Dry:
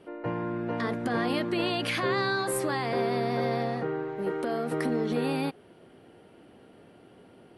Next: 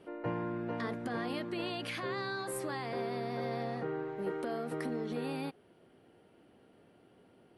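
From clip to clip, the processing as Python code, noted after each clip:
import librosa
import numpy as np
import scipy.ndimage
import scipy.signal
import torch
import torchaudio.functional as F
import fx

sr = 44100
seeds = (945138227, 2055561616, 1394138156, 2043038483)

y = fx.rider(x, sr, range_db=10, speed_s=0.5)
y = y * librosa.db_to_amplitude(-8.0)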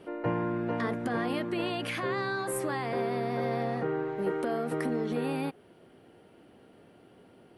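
y = fx.dynamic_eq(x, sr, hz=4400.0, q=1.7, threshold_db=-59.0, ratio=4.0, max_db=-6)
y = y * librosa.db_to_amplitude(6.0)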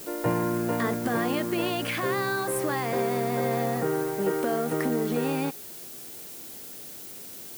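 y = fx.dmg_noise_colour(x, sr, seeds[0], colour='blue', level_db=-46.0)
y = y * librosa.db_to_amplitude(4.0)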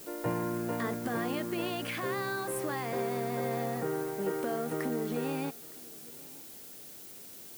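y = x + 10.0 ** (-23.0 / 20.0) * np.pad(x, (int(912 * sr / 1000.0), 0))[:len(x)]
y = y * librosa.db_to_amplitude(-6.5)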